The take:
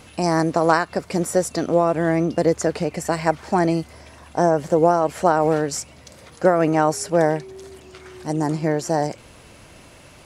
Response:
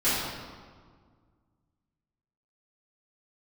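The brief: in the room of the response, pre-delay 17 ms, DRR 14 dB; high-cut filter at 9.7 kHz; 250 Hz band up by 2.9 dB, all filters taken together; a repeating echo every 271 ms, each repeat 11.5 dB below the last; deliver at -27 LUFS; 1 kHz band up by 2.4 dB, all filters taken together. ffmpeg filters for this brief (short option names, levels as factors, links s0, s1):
-filter_complex "[0:a]lowpass=9700,equalizer=f=250:t=o:g=4.5,equalizer=f=1000:t=o:g=3,aecho=1:1:271|542|813:0.266|0.0718|0.0194,asplit=2[s0][s1];[1:a]atrim=start_sample=2205,adelay=17[s2];[s1][s2]afir=irnorm=-1:irlink=0,volume=0.0398[s3];[s0][s3]amix=inputs=2:normalize=0,volume=0.355"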